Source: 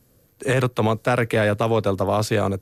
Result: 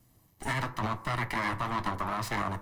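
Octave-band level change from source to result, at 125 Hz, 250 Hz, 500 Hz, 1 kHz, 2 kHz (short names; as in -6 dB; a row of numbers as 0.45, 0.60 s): -12.5, -12.5, -20.0, -5.5, -7.0 dB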